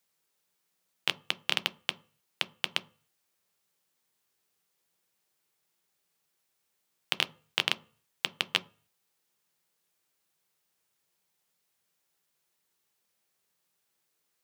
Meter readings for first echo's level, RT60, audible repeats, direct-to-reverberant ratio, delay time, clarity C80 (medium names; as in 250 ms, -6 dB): no echo, 0.40 s, no echo, 11.0 dB, no echo, 26.5 dB